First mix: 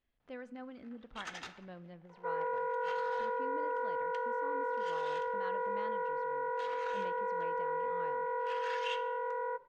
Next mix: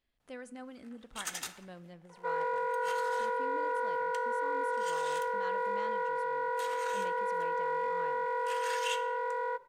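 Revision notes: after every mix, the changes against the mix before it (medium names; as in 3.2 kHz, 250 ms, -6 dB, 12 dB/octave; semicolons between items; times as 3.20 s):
second sound: remove distance through air 450 m; master: remove distance through air 210 m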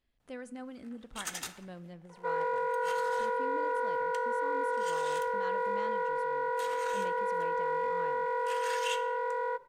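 master: add bass shelf 380 Hz +5 dB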